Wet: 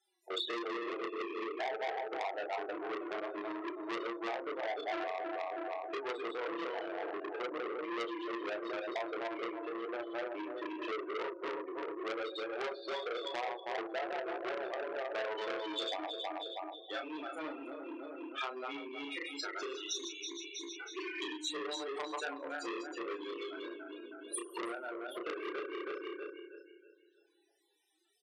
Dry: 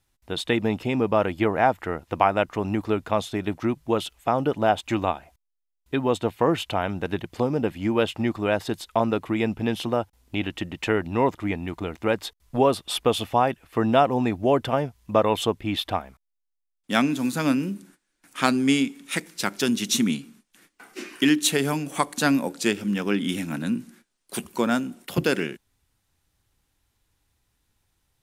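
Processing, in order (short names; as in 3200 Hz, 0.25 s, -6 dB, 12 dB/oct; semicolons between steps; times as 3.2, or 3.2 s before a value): regenerating reverse delay 0.16 s, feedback 58%, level -2.5 dB; 1.06–1.6 spectral gain 470–2100 Hz -30 dB; 9.69–12.18 high shelf 2000 Hz -11.5 dB; compressor 16:1, threshold -33 dBFS, peak gain reduction 21.5 dB; steep high-pass 320 Hz 72 dB/oct; bell 1000 Hz -3.5 dB 1.9 oct; notches 60/120/180/240/300/360/420/480/540 Hz; reverb RT60 1.1 s, pre-delay 5 ms, DRR 12.5 dB; loudest bins only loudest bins 16; doubler 32 ms -4.5 dB; echo 0.319 s -22 dB; core saturation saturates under 2600 Hz; gain +5 dB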